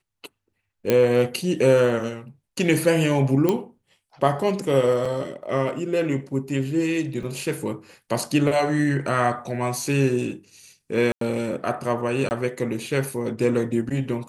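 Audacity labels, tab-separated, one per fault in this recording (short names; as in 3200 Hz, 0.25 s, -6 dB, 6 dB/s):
0.900000	0.900000	pop -6 dBFS
3.490000	3.490000	pop -8 dBFS
5.050000	5.050000	gap 4.6 ms
7.230000	7.230000	gap 2.2 ms
11.120000	11.210000	gap 93 ms
12.290000	12.310000	gap 19 ms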